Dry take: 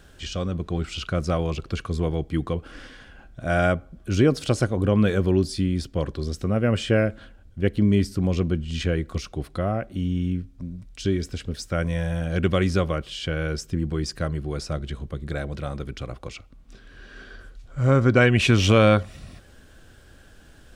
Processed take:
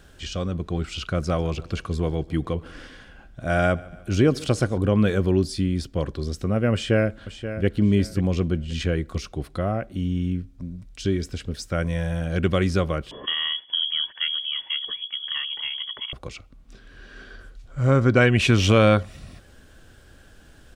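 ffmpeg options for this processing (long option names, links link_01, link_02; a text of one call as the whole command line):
ffmpeg -i in.wav -filter_complex "[0:a]asettb=1/sr,asplit=3[link_01][link_02][link_03];[link_01]atrim=end=1.074[link_04];[link_02]atrim=start=1.07:end=4.78,asetpts=PTS-STARTPTS,afade=type=in:duration=0.004:curve=qsin,afade=type=out:start_time=3.706:duration=0.004:curve=qsin,aecho=1:1:144|288|432|576:0.0794|0.0437|0.024|0.0132,atrim=end_sample=163611[link_05];[link_03]atrim=start=4.776[link_06];[link_04][link_05]acrossfade=duration=0.004:curve1=hsin:curve2=qsin[link_07];[link_07][link_06]acrossfade=duration=0.004:curve1=qsin:curve2=hsin,asplit=2[link_08][link_09];[link_09]afade=type=in:start_time=6.73:duration=0.01,afade=type=out:start_time=7.67:duration=0.01,aecho=0:1:530|1060|1590:0.281838|0.0704596|0.0176149[link_10];[link_08][link_10]amix=inputs=2:normalize=0,asettb=1/sr,asplit=3[link_11][link_12][link_13];[link_11]atrim=end=13.114[link_14];[link_12]atrim=start=13.11:end=16.13,asetpts=PTS-STARTPTS,afade=type=in:duration=0.004:curve=qsin,afade=type=out:start_time=3.016:duration=0.004:curve=qsin,lowpass=frequency=2900:width_type=q:width=0.5098,lowpass=frequency=2900:width_type=q:width=0.6013,lowpass=frequency=2900:width_type=q:width=0.9,lowpass=frequency=2900:width_type=q:width=2.563,afreqshift=-3400[link_15];[link_13]atrim=start=16.126[link_16];[link_14][link_15]acrossfade=duration=0.004:curve1=hsin:curve2=qsin[link_17];[link_17][link_16]acrossfade=duration=0.004:curve1=qsin:curve2=hsin" out.wav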